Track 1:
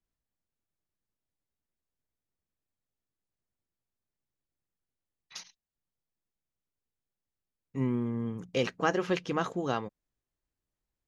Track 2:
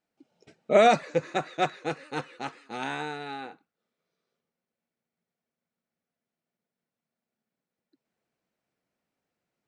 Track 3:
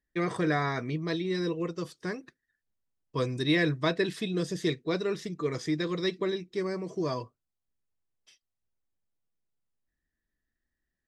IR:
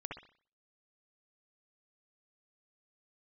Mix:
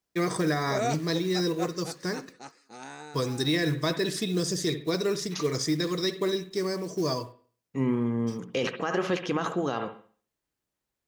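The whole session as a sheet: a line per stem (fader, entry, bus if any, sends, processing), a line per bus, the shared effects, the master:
+3.0 dB, 0.00 s, send -3.5 dB, high-pass 170 Hz 6 dB/octave
-9.5 dB, 0.00 s, no send, resonant high shelf 4.1 kHz +7.5 dB, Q 3
+0.5 dB, 0.00 s, send -6.5 dB, resonant high shelf 4 kHz +8 dB, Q 1.5; companded quantiser 6-bit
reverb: on, pre-delay 60 ms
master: peak limiter -17 dBFS, peak gain reduction 10.5 dB

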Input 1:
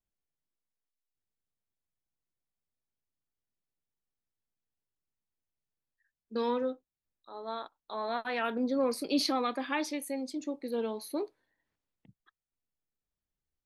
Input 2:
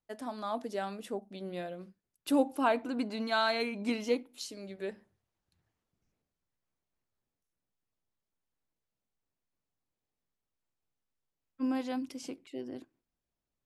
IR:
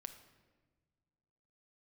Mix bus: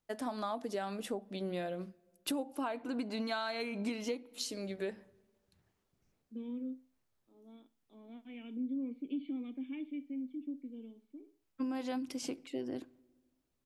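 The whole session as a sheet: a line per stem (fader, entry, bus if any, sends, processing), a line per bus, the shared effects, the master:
-1.5 dB, 0.00 s, no send, echo send -19.5 dB, cascade formant filter i; auto duck -16 dB, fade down 1.05 s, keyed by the second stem
+3.0 dB, 0.00 s, send -11.5 dB, no echo send, none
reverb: on, pre-delay 6 ms
echo: feedback delay 62 ms, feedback 32%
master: compression 16:1, threshold -33 dBFS, peak gain reduction 16.5 dB

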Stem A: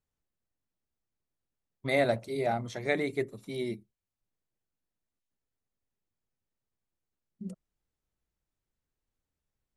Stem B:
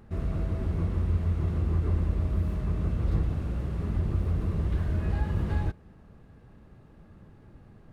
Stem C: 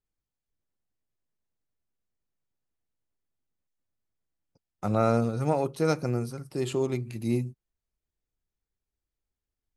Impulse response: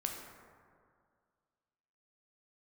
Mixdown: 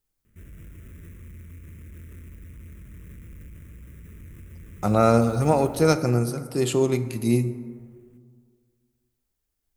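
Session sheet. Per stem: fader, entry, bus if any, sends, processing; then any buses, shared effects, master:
mute
-11.5 dB, 0.25 s, no send, sample-rate reducer 2.2 kHz, jitter 20%; overload inside the chain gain 28.5 dB; static phaser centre 1.9 kHz, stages 4
+2.5 dB, 0.00 s, send -6 dB, none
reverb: on, RT60 2.1 s, pre-delay 8 ms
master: treble shelf 7.7 kHz +10 dB

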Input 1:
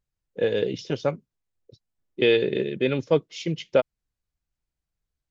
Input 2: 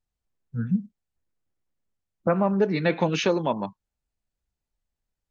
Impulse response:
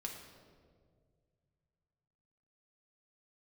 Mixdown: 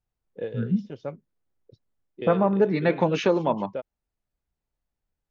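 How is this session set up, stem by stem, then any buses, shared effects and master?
-4.0 dB, 0.00 s, no send, gain riding 2 s; auto duck -10 dB, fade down 0.20 s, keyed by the second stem
+3.0 dB, 0.00 s, no send, bass shelf 200 Hz -5 dB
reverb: none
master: treble shelf 2.4 kHz -11 dB

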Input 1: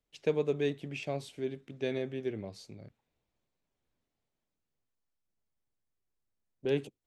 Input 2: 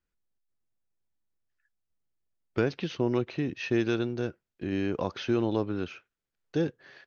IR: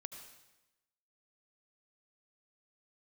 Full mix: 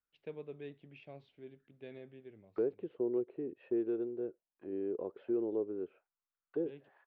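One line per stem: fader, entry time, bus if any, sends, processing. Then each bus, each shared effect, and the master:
-15.5 dB, 0.00 s, no send, auto duck -6 dB, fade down 0.45 s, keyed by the second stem
-1.5 dB, 0.00 s, no send, auto-wah 410–1300 Hz, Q 4.1, down, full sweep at -29 dBFS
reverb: none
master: low-pass 3.4 kHz 24 dB/octave

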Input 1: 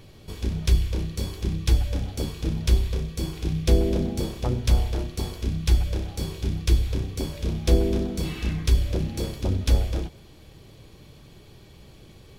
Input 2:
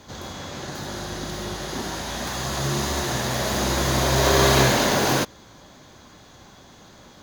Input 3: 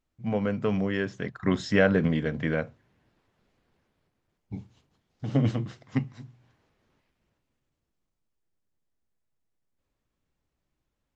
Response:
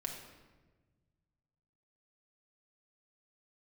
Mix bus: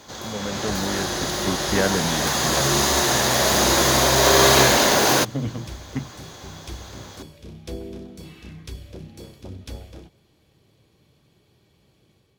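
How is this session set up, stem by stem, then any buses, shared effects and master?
-15.5 dB, 0.00 s, no send, high-pass 87 Hz
+1.5 dB, 0.00 s, no send, tone controls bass -7 dB, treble +3 dB
-6.5 dB, 0.00 s, no send, none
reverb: none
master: level rider gain up to 5 dB

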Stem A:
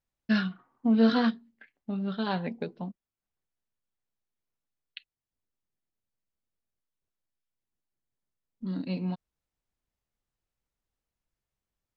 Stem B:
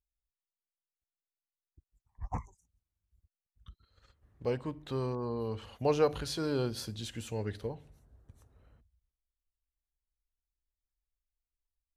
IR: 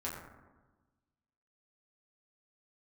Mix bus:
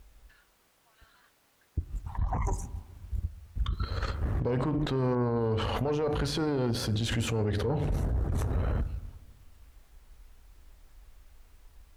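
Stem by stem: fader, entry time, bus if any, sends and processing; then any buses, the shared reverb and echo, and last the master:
-10.0 dB, 0.00 s, no send, high-pass 1.2 kHz 24 dB/octave; compression, threshold -45 dBFS, peak gain reduction 14 dB
-0.5 dB, 0.00 s, send -16 dB, level flattener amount 100%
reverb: on, RT60 1.2 s, pre-delay 6 ms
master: treble shelf 2.6 kHz -12 dB; valve stage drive 14 dB, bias 0.6; peak limiter -21 dBFS, peak gain reduction 7.5 dB

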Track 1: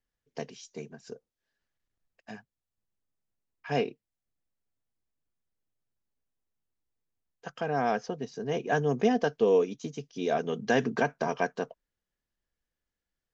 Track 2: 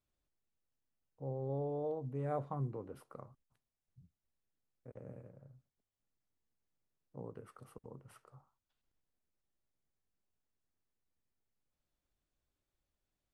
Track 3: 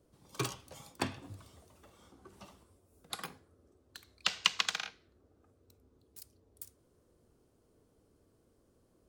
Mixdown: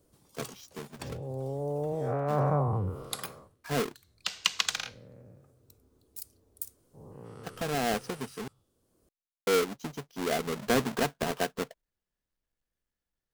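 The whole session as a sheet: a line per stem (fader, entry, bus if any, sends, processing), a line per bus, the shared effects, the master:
-5.5 dB, 0.00 s, muted 8.48–9.47 s, no send, square wave that keeps the level
-1.5 dB, 0.00 s, no send, every event in the spectrogram widened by 480 ms; low-pass that closes with the level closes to 2.3 kHz, closed at -30.5 dBFS; three bands expanded up and down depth 100%
+1.0 dB, 0.00 s, no send, treble shelf 6.1 kHz +10 dB; auto duck -11 dB, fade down 0.20 s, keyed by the first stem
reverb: none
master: none

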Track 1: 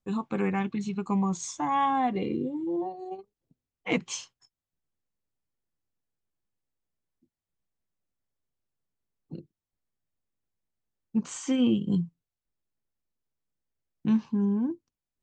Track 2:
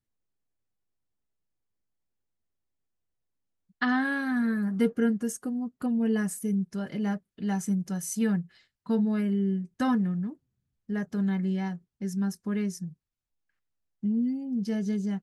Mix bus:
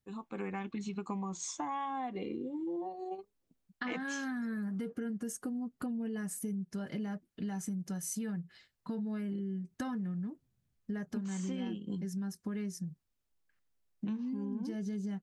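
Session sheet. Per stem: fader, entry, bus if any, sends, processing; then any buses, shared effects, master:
-12.5 dB, 0.00 s, no send, peaking EQ 130 Hz -14.5 dB 0.53 oct; level rider gain up to 11.5 dB
+0.5 dB, 0.00 s, no send, peak limiter -23.5 dBFS, peak gain reduction 10.5 dB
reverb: none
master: compression 6:1, threshold -35 dBFS, peak gain reduction 14 dB

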